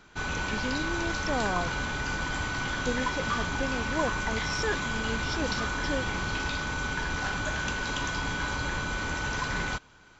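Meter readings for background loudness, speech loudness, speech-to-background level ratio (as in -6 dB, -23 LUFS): -30.5 LUFS, -35.5 LUFS, -5.0 dB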